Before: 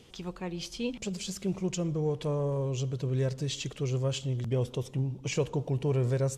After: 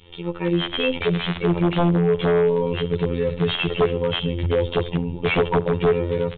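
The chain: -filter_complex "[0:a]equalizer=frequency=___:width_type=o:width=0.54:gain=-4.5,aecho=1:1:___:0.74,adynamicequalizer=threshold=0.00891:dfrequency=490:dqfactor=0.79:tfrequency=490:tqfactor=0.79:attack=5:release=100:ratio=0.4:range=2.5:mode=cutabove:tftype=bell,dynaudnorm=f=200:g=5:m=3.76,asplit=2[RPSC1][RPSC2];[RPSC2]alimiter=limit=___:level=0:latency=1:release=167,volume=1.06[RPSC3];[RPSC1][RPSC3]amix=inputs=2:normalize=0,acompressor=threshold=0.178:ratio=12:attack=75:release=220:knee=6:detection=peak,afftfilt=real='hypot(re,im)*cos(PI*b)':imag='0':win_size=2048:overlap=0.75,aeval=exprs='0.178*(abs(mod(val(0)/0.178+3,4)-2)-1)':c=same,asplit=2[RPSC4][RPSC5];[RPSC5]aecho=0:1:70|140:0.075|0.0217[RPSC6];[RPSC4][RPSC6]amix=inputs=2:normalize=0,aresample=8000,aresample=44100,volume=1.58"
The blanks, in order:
1500, 2.2, 0.224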